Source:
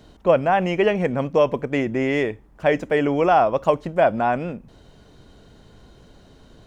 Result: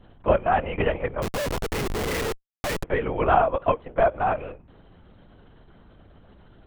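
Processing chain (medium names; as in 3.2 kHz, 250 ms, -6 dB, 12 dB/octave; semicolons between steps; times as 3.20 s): Bessel high-pass 490 Hz, order 8; distance through air 330 m; hum 60 Hz, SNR 26 dB; LPC vocoder at 8 kHz whisper; 1.22–2.84 s: Schmitt trigger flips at -38 dBFS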